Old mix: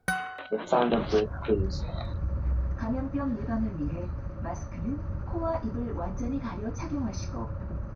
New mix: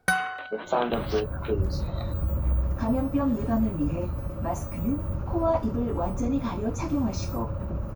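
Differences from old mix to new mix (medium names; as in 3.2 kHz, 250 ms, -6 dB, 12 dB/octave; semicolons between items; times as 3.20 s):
first sound +6.0 dB; second sound: remove rippled Chebyshev low-pass 6.3 kHz, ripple 9 dB; master: add bass shelf 310 Hz -6 dB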